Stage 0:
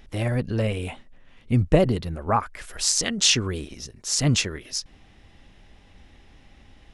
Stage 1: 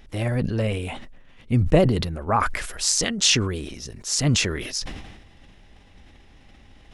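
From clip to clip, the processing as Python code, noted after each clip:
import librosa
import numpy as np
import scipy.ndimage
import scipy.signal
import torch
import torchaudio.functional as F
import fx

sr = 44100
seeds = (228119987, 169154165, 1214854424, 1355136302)

y = fx.sustainer(x, sr, db_per_s=47.0)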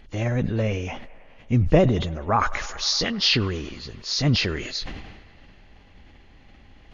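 y = fx.freq_compress(x, sr, knee_hz=2700.0, ratio=1.5)
y = fx.echo_wet_bandpass(y, sr, ms=102, feedback_pct=80, hz=1200.0, wet_db=-19.0)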